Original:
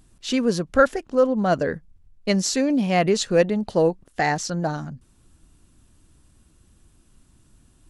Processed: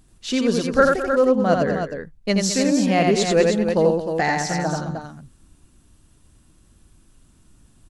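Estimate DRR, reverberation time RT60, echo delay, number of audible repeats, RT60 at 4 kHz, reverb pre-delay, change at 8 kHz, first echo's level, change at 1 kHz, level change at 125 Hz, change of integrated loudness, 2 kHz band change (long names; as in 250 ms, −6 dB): no reverb audible, no reverb audible, 85 ms, 3, no reverb audible, no reverb audible, +2.5 dB, −3.5 dB, +2.0 dB, +2.0 dB, +2.0 dB, +2.5 dB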